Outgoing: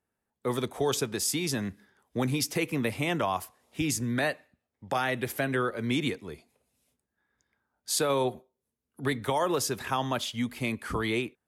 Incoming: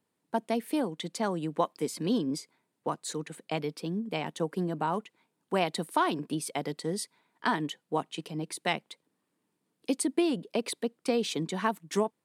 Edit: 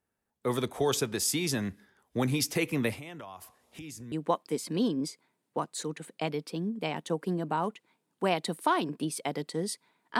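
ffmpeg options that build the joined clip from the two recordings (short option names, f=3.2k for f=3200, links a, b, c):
-filter_complex "[0:a]asettb=1/sr,asplit=3[a][b][c];[a]atrim=end=2.944[d];[b]atrim=start=2.94:end=4.12,asetpts=PTS-STARTPTS,afade=t=in:d=0.004:c=qsin,afade=t=out:st=1.176:d=0.004:c=qsin,acompressor=threshold=-42dB:ratio=5:attack=3.2:release=140:knee=1:detection=peak[e];[c]atrim=start=4.116[f];[d][e]acrossfade=d=0.004:c1=hsin:c2=qsin[g];[g][f]acrossfade=d=0.004:c1=qsin:c2=hsin,apad=whole_dur=10.19,atrim=end=10.19,atrim=end=4.122[h];[1:a]atrim=start=1.418:end=7.49[i];[h][i]acrossfade=d=0.004:c1=hsin:c2=hsin"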